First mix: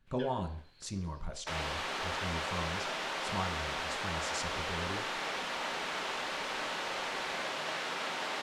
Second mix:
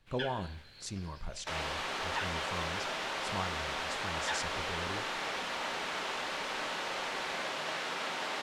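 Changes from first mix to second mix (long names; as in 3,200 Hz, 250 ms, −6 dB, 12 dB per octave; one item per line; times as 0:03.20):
speech: send −7.0 dB
first sound +9.5 dB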